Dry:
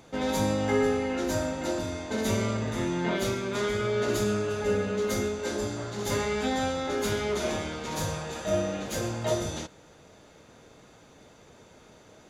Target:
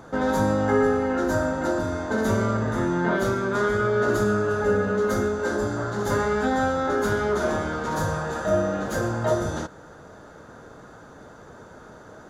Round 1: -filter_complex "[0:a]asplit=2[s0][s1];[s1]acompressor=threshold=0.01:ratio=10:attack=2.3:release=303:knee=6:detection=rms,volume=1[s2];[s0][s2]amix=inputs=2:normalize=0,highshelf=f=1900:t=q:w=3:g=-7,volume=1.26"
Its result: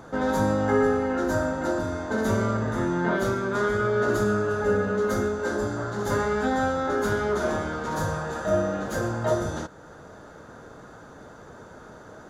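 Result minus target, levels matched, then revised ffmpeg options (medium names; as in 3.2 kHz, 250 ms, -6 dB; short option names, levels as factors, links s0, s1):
compression: peak gain reduction +8 dB
-filter_complex "[0:a]asplit=2[s0][s1];[s1]acompressor=threshold=0.0282:ratio=10:attack=2.3:release=303:knee=6:detection=rms,volume=1[s2];[s0][s2]amix=inputs=2:normalize=0,highshelf=f=1900:t=q:w=3:g=-7,volume=1.26"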